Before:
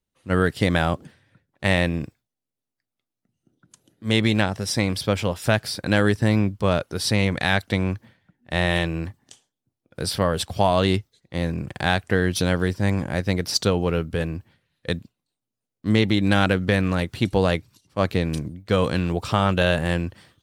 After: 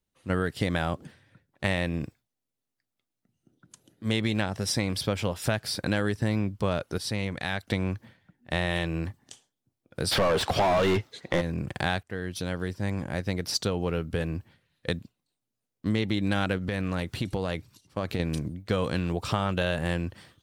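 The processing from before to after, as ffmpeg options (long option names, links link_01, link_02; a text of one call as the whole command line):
ffmpeg -i in.wav -filter_complex "[0:a]asplit=3[link_01][link_02][link_03];[link_01]afade=type=out:start_time=10.11:duration=0.02[link_04];[link_02]asplit=2[link_05][link_06];[link_06]highpass=frequency=720:poles=1,volume=33dB,asoftclip=type=tanh:threshold=-5dB[link_07];[link_05][link_07]amix=inputs=2:normalize=0,lowpass=frequency=1600:poles=1,volume=-6dB,afade=type=in:start_time=10.11:duration=0.02,afade=type=out:start_time=11.4:duration=0.02[link_08];[link_03]afade=type=in:start_time=11.4:duration=0.02[link_09];[link_04][link_08][link_09]amix=inputs=3:normalize=0,asettb=1/sr,asplit=3[link_10][link_11][link_12];[link_10]atrim=end=16.584[link_13];[link_11]atrim=start=16.58:end=18.2,asetpts=PTS-STARTPTS,afade=type=in:duration=0.004:curve=qsin,afade=type=out:start_time=1.616:duration=0.004:curve=qsin,acompressor=threshold=-23dB:ratio=6:attack=3.2:release=140:knee=1:detection=peak[link_14];[link_12]atrim=start=18.196[link_15];[link_13][link_14]acrossfade=duration=0.004:curve1=hsin:curve2=qsin[link_16];[link_16][link_15]acrossfade=duration=0.004:curve1=qsin:curve2=hsin,asplit=4[link_17][link_18][link_19][link_20];[link_17]atrim=end=6.982[link_21];[link_18]atrim=start=6.978:end=7.672,asetpts=PTS-STARTPTS,volume=-8.5dB[link_22];[link_19]atrim=start=7.668:end=12.03,asetpts=PTS-STARTPTS,afade=type=out:start_time=4.358:duration=0.004:curve=hsin:silence=0.16788[link_23];[link_20]atrim=start=12.03,asetpts=PTS-STARTPTS,afade=type=in:duration=2.35:silence=0.16788[link_24];[link_21][link_22]acrossfade=duration=0.004:curve1=hsin:curve2=hsin[link_25];[link_23][link_24]concat=n=2:v=0:a=1[link_26];[link_25][link_26]acrossfade=duration=0.004:curve1=hsin:curve2=hsin,acompressor=threshold=-25dB:ratio=3" out.wav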